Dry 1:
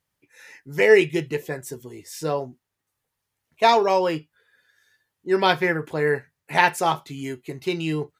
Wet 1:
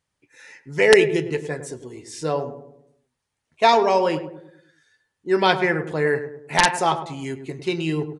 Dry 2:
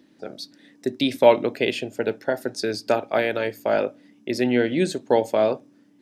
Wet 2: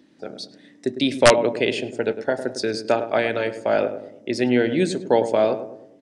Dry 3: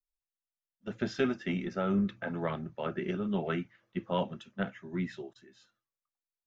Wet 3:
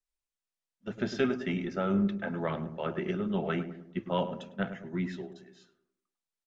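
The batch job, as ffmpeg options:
-filter_complex "[0:a]asplit=2[link_01][link_02];[link_02]adelay=104,lowpass=frequency=980:poles=1,volume=-9dB,asplit=2[link_03][link_04];[link_04]adelay=104,lowpass=frequency=980:poles=1,volume=0.5,asplit=2[link_05][link_06];[link_06]adelay=104,lowpass=frequency=980:poles=1,volume=0.5,asplit=2[link_07][link_08];[link_08]adelay=104,lowpass=frequency=980:poles=1,volume=0.5,asplit=2[link_09][link_10];[link_10]adelay=104,lowpass=frequency=980:poles=1,volume=0.5,asplit=2[link_11][link_12];[link_12]adelay=104,lowpass=frequency=980:poles=1,volume=0.5[link_13];[link_01][link_03][link_05][link_07][link_09][link_11][link_13]amix=inputs=7:normalize=0,aeval=exprs='(mod(1.58*val(0)+1,2)-1)/1.58':channel_layout=same,aresample=22050,aresample=44100,volume=1dB"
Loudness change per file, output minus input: +1.0, +1.5, +1.5 LU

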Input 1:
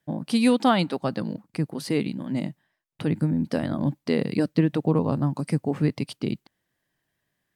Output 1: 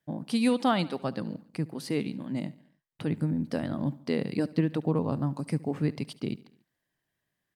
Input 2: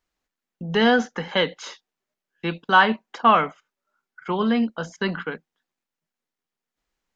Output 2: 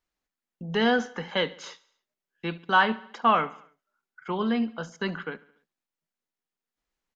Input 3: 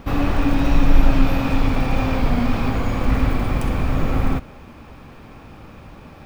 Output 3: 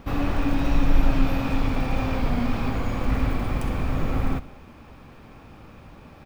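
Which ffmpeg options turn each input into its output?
-af "aecho=1:1:71|142|213|284:0.0944|0.0529|0.0296|0.0166,volume=-5dB"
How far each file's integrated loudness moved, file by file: −5.0, −5.0, −5.0 LU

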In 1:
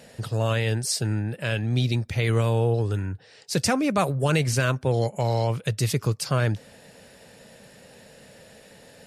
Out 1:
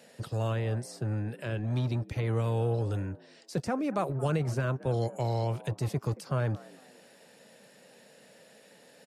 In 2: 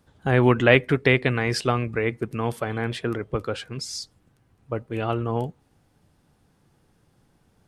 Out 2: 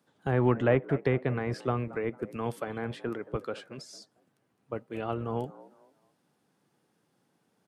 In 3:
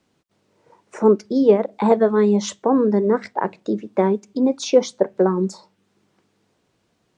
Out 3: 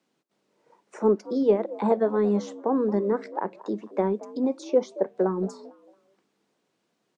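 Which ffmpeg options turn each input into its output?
-filter_complex "[0:a]acrossover=split=150|1500[link_01][link_02][link_03];[link_01]acrusher=bits=4:mix=0:aa=0.5[link_04];[link_02]asplit=4[link_05][link_06][link_07][link_08];[link_06]adelay=225,afreqshift=67,volume=-17dB[link_09];[link_07]adelay=450,afreqshift=134,volume=-27.5dB[link_10];[link_08]adelay=675,afreqshift=201,volume=-37.9dB[link_11];[link_05][link_09][link_10][link_11]amix=inputs=4:normalize=0[link_12];[link_03]acompressor=threshold=-40dB:ratio=6[link_13];[link_04][link_12][link_13]amix=inputs=3:normalize=0,volume=-6.5dB"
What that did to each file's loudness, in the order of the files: −7.0, −7.5, −6.5 LU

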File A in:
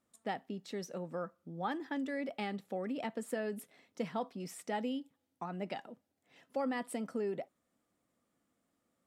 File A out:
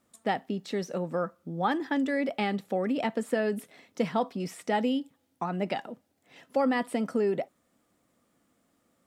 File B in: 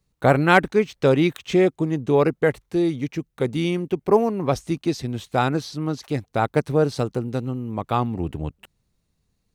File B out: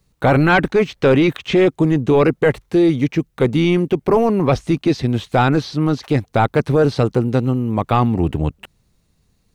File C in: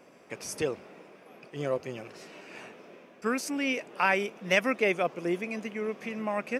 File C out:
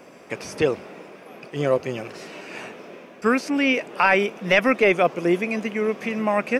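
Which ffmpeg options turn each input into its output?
-filter_complex "[0:a]apsyclip=17.5dB,acrossover=split=4300[link_01][link_02];[link_02]acompressor=threshold=-37dB:ratio=4:attack=1:release=60[link_03];[link_01][link_03]amix=inputs=2:normalize=0,volume=-8dB"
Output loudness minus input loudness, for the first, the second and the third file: +9.5, +5.5, +8.5 LU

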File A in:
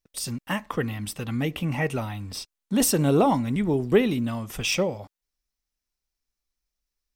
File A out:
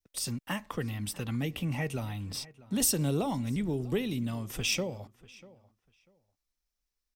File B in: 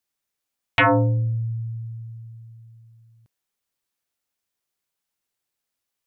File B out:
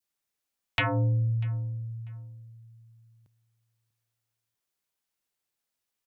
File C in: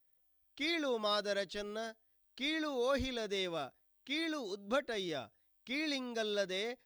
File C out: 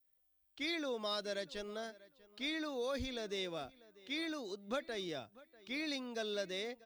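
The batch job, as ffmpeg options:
-filter_complex "[0:a]acrossover=split=140|3000[link_01][link_02][link_03];[link_02]acompressor=threshold=-33dB:ratio=2[link_04];[link_01][link_04][link_03]amix=inputs=3:normalize=0,asplit=2[link_05][link_06];[link_06]adelay=643,lowpass=frequency=3600:poles=1,volume=-21dB,asplit=2[link_07][link_08];[link_08]adelay=643,lowpass=frequency=3600:poles=1,volume=0.2[link_09];[link_07][link_09]amix=inputs=2:normalize=0[link_10];[link_05][link_10]amix=inputs=2:normalize=0,adynamicequalizer=threshold=0.00501:dfrequency=1200:dqfactor=0.89:tfrequency=1200:tqfactor=0.89:attack=5:release=100:ratio=0.375:range=2:mode=cutabove:tftype=bell,volume=-2.5dB"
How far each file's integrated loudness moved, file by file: −7.0, −7.0, −3.5 LU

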